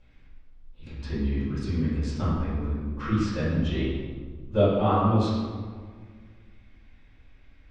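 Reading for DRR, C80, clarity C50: -14.5 dB, 1.0 dB, -1.5 dB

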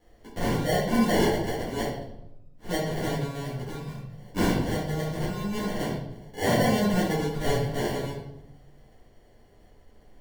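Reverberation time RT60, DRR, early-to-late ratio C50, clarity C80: 0.90 s, -10.0 dB, 2.5 dB, 6.0 dB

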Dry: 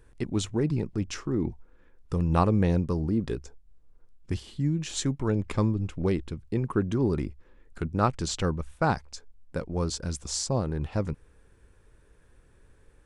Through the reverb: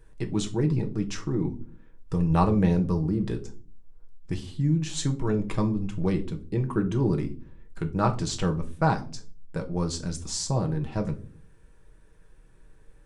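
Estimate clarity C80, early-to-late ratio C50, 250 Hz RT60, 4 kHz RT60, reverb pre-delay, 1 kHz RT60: 21.0 dB, 15.5 dB, 0.70 s, 0.25 s, 5 ms, 0.30 s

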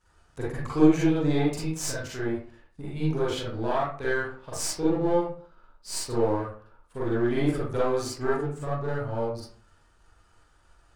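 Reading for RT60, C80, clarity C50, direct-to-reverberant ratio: 0.45 s, 6.0 dB, -0.5 dB, -8.0 dB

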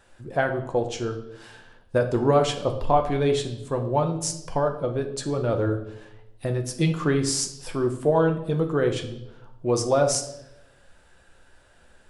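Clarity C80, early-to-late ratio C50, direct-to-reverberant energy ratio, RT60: 13.0 dB, 10.0 dB, 4.0 dB, 0.85 s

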